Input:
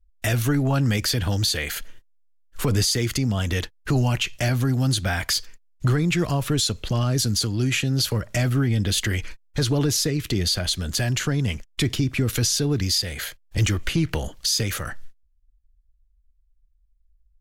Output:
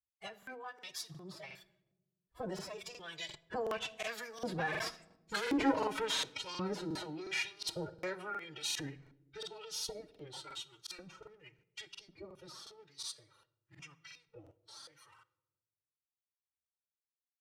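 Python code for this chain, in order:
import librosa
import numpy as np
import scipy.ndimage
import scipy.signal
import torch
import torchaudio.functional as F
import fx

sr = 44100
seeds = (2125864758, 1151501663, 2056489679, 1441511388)

p1 = fx.lower_of_two(x, sr, delay_ms=3.2)
p2 = fx.doppler_pass(p1, sr, speed_mps=32, closest_m=11.0, pass_at_s=5.45)
p3 = fx.noise_reduce_blind(p2, sr, reduce_db=12)
p4 = fx.over_compress(p3, sr, threshold_db=-42.0, ratio=-1.0)
p5 = p3 + (p4 * 10.0 ** (-1.0 / 20.0))
p6 = fx.filter_lfo_bandpass(p5, sr, shape='saw_up', hz=0.91, low_hz=360.0, high_hz=4700.0, q=0.73)
p7 = fx.pitch_keep_formants(p6, sr, semitones=8.5)
p8 = fx.echo_filtered(p7, sr, ms=67, feedback_pct=81, hz=910.0, wet_db=-22)
p9 = fx.room_shoebox(p8, sr, seeds[0], volume_m3=3300.0, walls='furnished', distance_m=0.6)
p10 = fx.buffer_crackle(p9, sr, first_s=0.38, period_s=0.36, block=2048, kind='repeat')
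y = p10 * 10.0 ** (2.0 / 20.0)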